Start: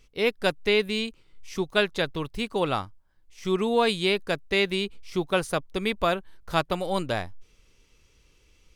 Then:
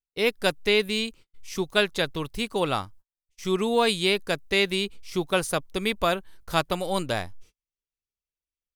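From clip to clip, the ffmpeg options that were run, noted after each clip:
-af "agate=range=-40dB:threshold=-47dB:ratio=16:detection=peak,highshelf=f=5.6k:g=9"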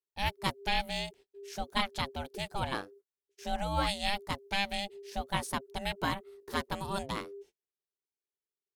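-af "aeval=exprs='val(0)*sin(2*PI*400*n/s)':c=same,volume=-5.5dB"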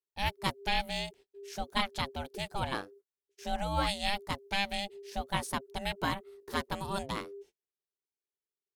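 -af anull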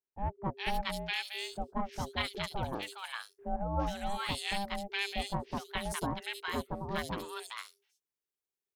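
-filter_complex "[0:a]acrossover=split=1100|4200[a][b][c];[b]adelay=410[d];[c]adelay=480[e];[a][d][e]amix=inputs=3:normalize=0"

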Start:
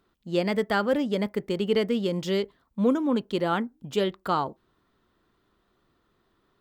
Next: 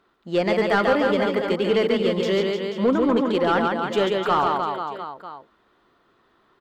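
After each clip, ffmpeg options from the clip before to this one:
-filter_complex "[0:a]aecho=1:1:140|301|486.2|699.1|943.9:0.631|0.398|0.251|0.158|0.1,asplit=2[a][b];[b]highpass=f=720:p=1,volume=16dB,asoftclip=type=tanh:threshold=-8.5dB[c];[a][c]amix=inputs=2:normalize=0,lowpass=f=1.9k:p=1,volume=-6dB"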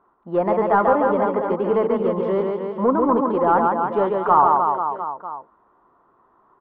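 -af "lowpass=f=1k:t=q:w=3.4,volume=-1dB"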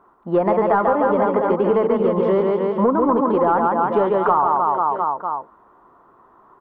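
-af "acompressor=threshold=-21dB:ratio=6,volume=7dB"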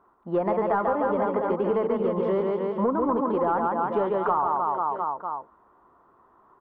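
-af "equalizer=f=71:w=4.3:g=7,volume=-7dB"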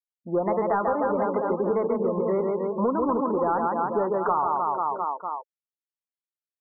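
-af "afftfilt=real='re*gte(hypot(re,im),0.0178)':imag='im*gte(hypot(re,im),0.0178)':win_size=1024:overlap=0.75"

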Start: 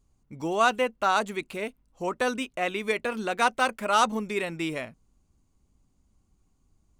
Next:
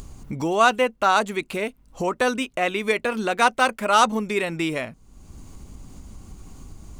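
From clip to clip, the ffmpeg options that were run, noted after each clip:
-af "acompressor=mode=upward:threshold=-27dB:ratio=2.5,volume=5dB"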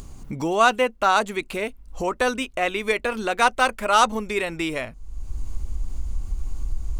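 -af "asubboost=boost=11:cutoff=51"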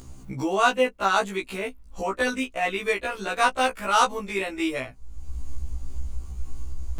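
-af "afftfilt=real='re*1.73*eq(mod(b,3),0)':imag='im*1.73*eq(mod(b,3),0)':win_size=2048:overlap=0.75"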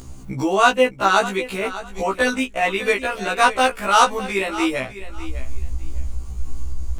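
-af "aecho=1:1:604|1208:0.188|0.0377,volume=5.5dB"

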